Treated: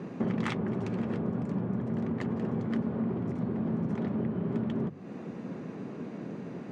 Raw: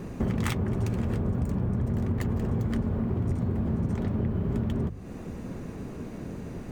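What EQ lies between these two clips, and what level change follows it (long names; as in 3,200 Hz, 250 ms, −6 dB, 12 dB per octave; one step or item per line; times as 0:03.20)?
high-pass filter 150 Hz 24 dB per octave
high-frequency loss of the air 100 metres
high-shelf EQ 6,500 Hz −6.5 dB
0.0 dB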